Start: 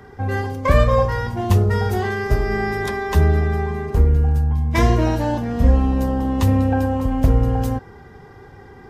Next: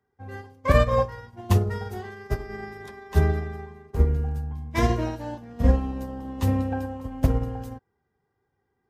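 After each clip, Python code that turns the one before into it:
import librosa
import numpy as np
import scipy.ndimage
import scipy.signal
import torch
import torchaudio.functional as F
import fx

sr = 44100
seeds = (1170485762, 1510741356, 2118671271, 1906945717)

y = fx.highpass(x, sr, hz=66.0, slope=6)
y = fx.upward_expand(y, sr, threshold_db=-34.0, expansion=2.5)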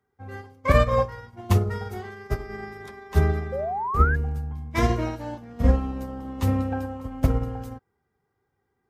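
y = fx.spec_paint(x, sr, seeds[0], shape='rise', start_s=3.52, length_s=0.64, low_hz=510.0, high_hz=1700.0, level_db=-28.0)
y = fx.small_body(y, sr, hz=(1300.0, 2200.0), ring_ms=35, db=9)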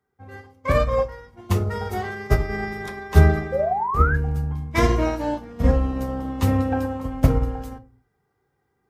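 y = fx.rider(x, sr, range_db=5, speed_s=0.5)
y = fx.room_shoebox(y, sr, seeds[1], volume_m3=120.0, walls='furnished', distance_m=0.5)
y = y * librosa.db_to_amplitude(3.5)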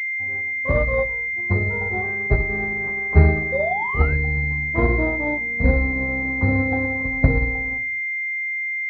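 y = fx.pwm(x, sr, carrier_hz=2100.0)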